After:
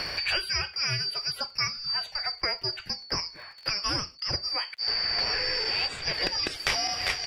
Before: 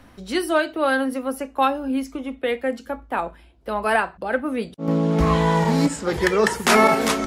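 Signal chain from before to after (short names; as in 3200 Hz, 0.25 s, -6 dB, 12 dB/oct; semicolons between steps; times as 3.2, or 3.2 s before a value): four-band scrambler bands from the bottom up 2341; resonant high shelf 3500 Hz -9 dB, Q 1.5; crackle 54/s -53 dBFS; graphic EQ 250/500/2000/4000 Hz -8/+3/+8/+6 dB; three-band squash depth 100%; gain -6 dB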